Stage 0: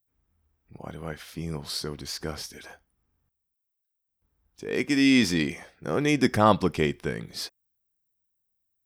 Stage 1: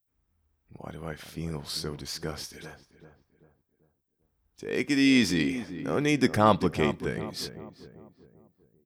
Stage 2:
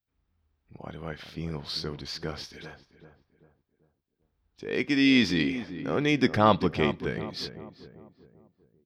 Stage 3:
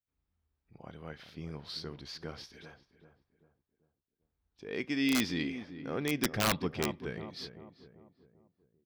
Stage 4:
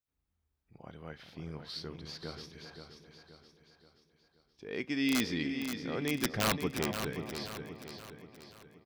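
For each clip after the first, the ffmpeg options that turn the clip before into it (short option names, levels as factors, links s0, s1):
-filter_complex "[0:a]asplit=2[s0][s1];[s1]adelay=391,lowpass=f=1300:p=1,volume=0.266,asplit=2[s2][s3];[s3]adelay=391,lowpass=f=1300:p=1,volume=0.45,asplit=2[s4][s5];[s5]adelay=391,lowpass=f=1300:p=1,volume=0.45,asplit=2[s6][s7];[s7]adelay=391,lowpass=f=1300:p=1,volume=0.45,asplit=2[s8][s9];[s9]adelay=391,lowpass=f=1300:p=1,volume=0.45[s10];[s0][s2][s4][s6][s8][s10]amix=inputs=6:normalize=0,volume=0.841"
-af "highshelf=f=6000:t=q:w=1.5:g=-12.5"
-af "aeval=exprs='(mod(3.98*val(0)+1,2)-1)/3.98':c=same,volume=0.398"
-af "aecho=1:1:527|1054|1581|2108|2635:0.398|0.187|0.0879|0.0413|0.0194,volume=0.891"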